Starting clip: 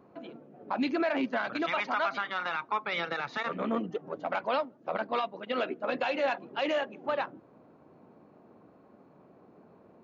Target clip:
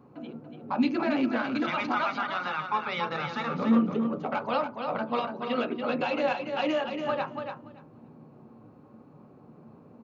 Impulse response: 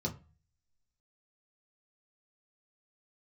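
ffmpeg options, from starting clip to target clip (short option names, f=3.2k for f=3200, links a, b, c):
-filter_complex "[0:a]aecho=1:1:286|572|858:0.473|0.071|0.0106,asplit=2[a][b];[1:a]atrim=start_sample=2205,lowpass=2.2k[c];[b][c]afir=irnorm=-1:irlink=0,volume=-6dB[d];[a][d]amix=inputs=2:normalize=0"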